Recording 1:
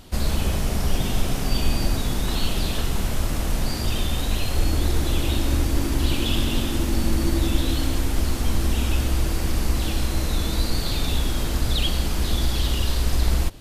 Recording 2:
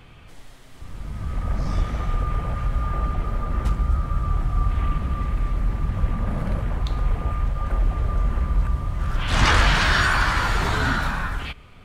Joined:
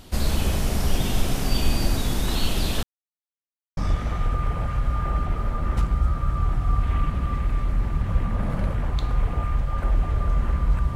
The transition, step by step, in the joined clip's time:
recording 1
2.83–3.77 s: mute
3.77 s: go over to recording 2 from 1.65 s

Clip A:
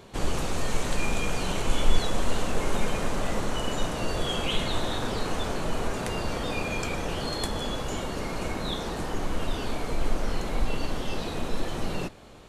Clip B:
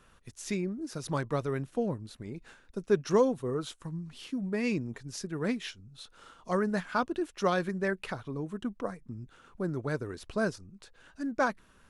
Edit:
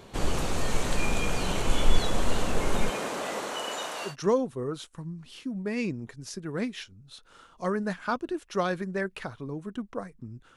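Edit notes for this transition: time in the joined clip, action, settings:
clip A
2.89–4.16 s: high-pass 240 Hz -> 810 Hz
4.10 s: go over to clip B from 2.97 s, crossfade 0.12 s

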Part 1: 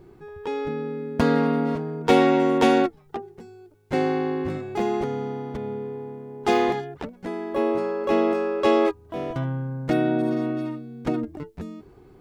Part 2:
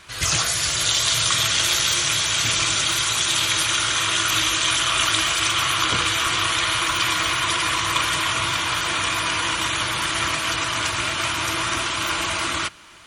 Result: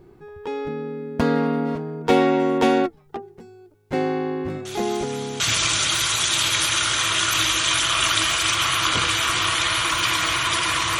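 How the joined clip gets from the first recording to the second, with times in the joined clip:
part 1
4.65 s: add part 2 from 1.62 s 0.75 s -17 dB
5.40 s: go over to part 2 from 2.37 s

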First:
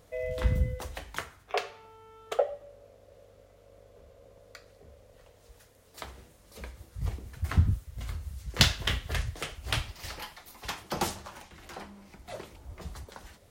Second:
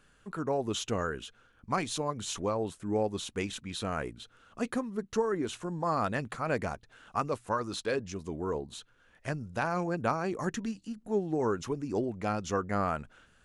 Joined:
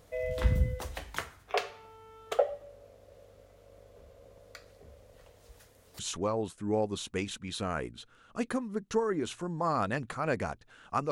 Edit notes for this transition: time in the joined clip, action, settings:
first
5.99 s: go over to second from 2.21 s

